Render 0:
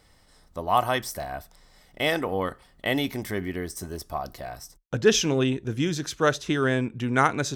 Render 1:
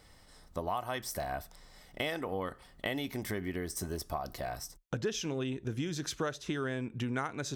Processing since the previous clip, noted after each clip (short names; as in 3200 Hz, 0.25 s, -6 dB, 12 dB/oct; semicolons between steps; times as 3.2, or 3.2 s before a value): compressor 6:1, threshold -32 dBFS, peak gain reduction 18 dB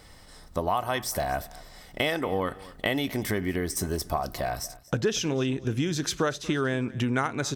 feedback echo 0.236 s, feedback 24%, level -20 dB; gain +8 dB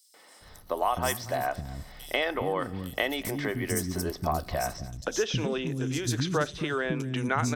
three bands offset in time highs, mids, lows 0.14/0.41 s, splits 290/5000 Hz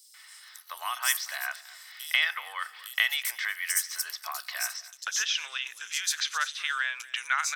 HPF 1400 Hz 24 dB/oct; gain +6 dB